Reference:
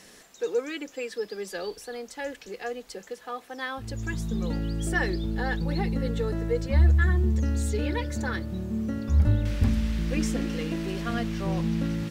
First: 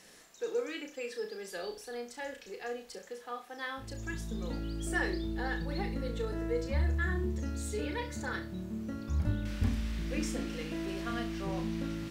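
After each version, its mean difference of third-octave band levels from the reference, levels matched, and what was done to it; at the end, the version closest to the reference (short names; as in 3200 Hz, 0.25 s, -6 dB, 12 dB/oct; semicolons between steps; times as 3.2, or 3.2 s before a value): 2.5 dB: low shelf 350 Hz -2.5 dB; flutter echo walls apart 5.7 m, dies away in 0.31 s; gain -6 dB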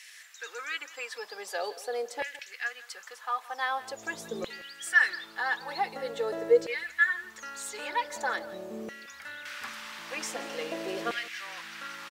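10.0 dB: LFO high-pass saw down 0.45 Hz 460–2200 Hz; echo 0.169 s -18 dB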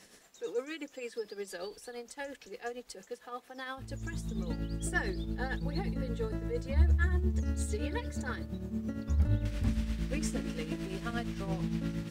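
1.5 dB: dynamic EQ 8700 Hz, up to +5 dB, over -58 dBFS, Q 2.2; tremolo triangle 8.7 Hz, depth 65%; gain -4 dB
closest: third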